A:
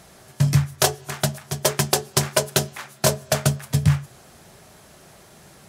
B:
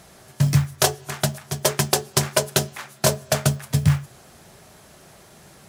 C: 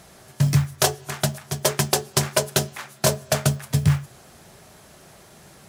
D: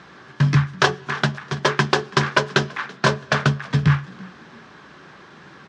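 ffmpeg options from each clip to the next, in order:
-af "acrusher=bits=7:mode=log:mix=0:aa=0.000001"
-af "asoftclip=type=tanh:threshold=0.562"
-filter_complex "[0:a]highpass=100,equalizer=f=100:t=q:w=4:g=-9,equalizer=f=300:t=q:w=4:g=5,equalizer=f=650:t=q:w=4:g=-9,equalizer=f=1100:t=q:w=4:g=7,equalizer=f=1600:t=q:w=4:g=8,equalizer=f=4500:t=q:w=4:g=-3,lowpass=f=4600:w=0.5412,lowpass=f=4600:w=1.3066,asplit=3[s0][s1][s2];[s1]adelay=332,afreqshift=43,volume=0.0708[s3];[s2]adelay=664,afreqshift=86,volume=0.0234[s4];[s0][s3][s4]amix=inputs=3:normalize=0,volume=1.58"

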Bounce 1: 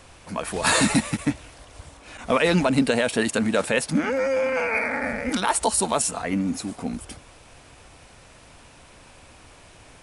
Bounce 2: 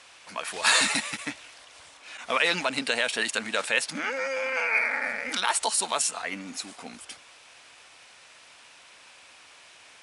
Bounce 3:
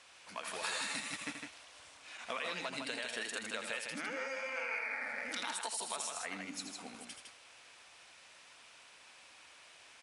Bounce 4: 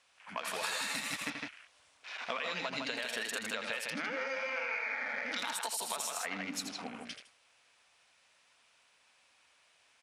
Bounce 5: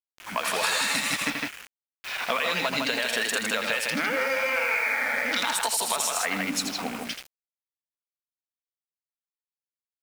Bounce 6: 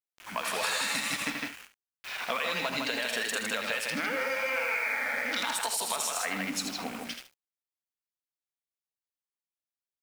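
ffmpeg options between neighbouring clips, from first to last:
-af "bandpass=f=3400:t=q:w=0.57:csg=0,volume=1.33"
-filter_complex "[0:a]acompressor=threshold=0.0355:ratio=6,asplit=2[s0][s1];[s1]aecho=0:1:81.63|157.4:0.398|0.562[s2];[s0][s2]amix=inputs=2:normalize=0,volume=0.398"
-af "afwtdn=0.00224,equalizer=f=340:w=4.8:g=-5,acompressor=threshold=0.00891:ratio=3,volume=2.24"
-filter_complex "[0:a]highpass=61,asplit=2[s0][s1];[s1]asoftclip=type=tanh:threshold=0.0335,volume=0.531[s2];[s0][s2]amix=inputs=2:normalize=0,acrusher=bits=7:mix=0:aa=0.000001,volume=2.37"
-af "aecho=1:1:47|72:0.158|0.2,volume=0.562"

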